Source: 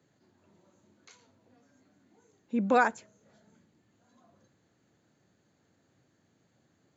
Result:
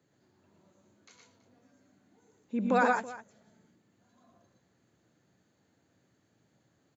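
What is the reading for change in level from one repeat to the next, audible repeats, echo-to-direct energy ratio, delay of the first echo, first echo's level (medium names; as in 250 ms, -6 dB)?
no regular repeats, 3, -2.0 dB, 78 ms, -15.0 dB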